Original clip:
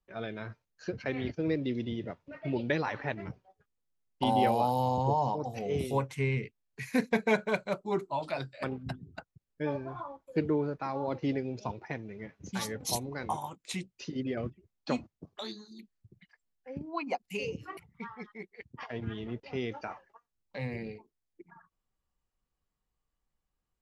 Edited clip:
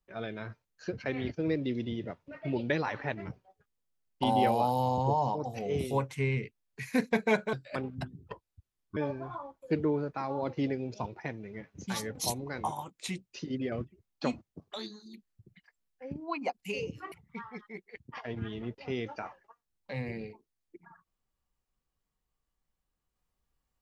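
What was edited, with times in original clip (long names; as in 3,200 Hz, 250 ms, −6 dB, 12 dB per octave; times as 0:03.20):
0:07.53–0:08.41: remove
0:09.16–0:09.62: play speed 67%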